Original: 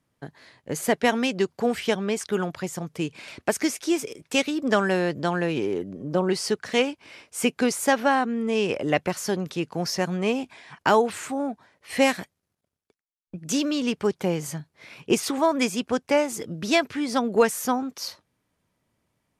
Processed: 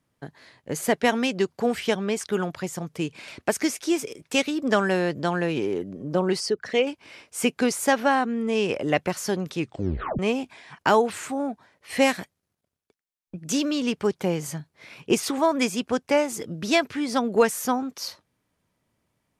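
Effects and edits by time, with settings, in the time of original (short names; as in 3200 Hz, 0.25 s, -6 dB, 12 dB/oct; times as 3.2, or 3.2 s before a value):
6.4–6.87 formant sharpening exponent 1.5
9.58 tape stop 0.61 s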